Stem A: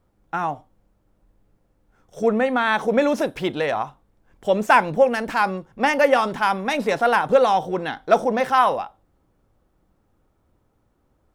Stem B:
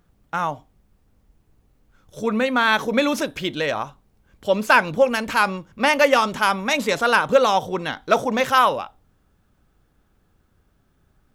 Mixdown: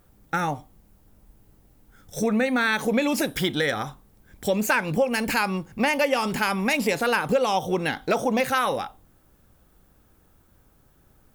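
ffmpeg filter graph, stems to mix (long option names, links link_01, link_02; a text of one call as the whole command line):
ffmpeg -i stem1.wav -i stem2.wav -filter_complex "[0:a]aemphasis=mode=production:type=75fm,alimiter=limit=-12dB:level=0:latency=1:release=142,volume=1.5dB[link_01];[1:a]volume=1dB[link_02];[link_01][link_02]amix=inputs=2:normalize=0,acompressor=threshold=-22dB:ratio=2.5" out.wav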